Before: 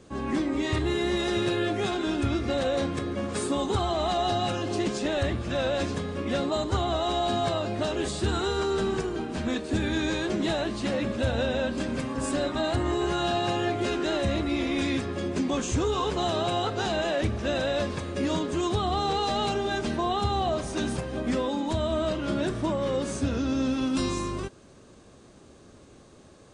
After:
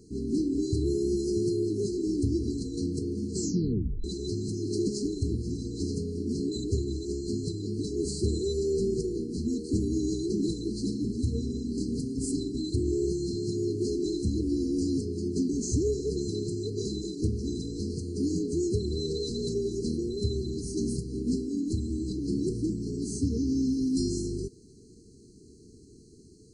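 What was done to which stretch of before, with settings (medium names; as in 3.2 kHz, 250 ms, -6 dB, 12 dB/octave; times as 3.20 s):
3.30 s: tape stop 0.74 s
whole clip: FFT band-reject 470–4000 Hz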